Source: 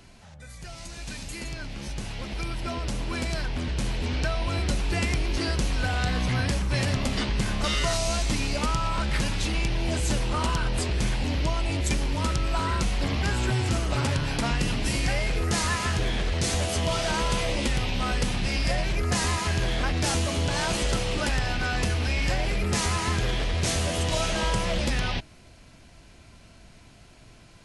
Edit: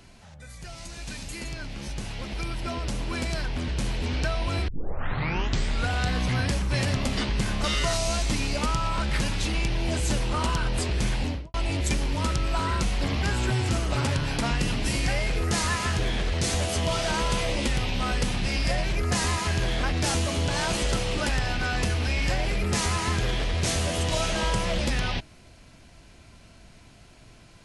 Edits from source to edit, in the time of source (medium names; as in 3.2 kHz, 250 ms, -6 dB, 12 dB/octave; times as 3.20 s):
4.68 s: tape start 1.23 s
11.21–11.54 s: studio fade out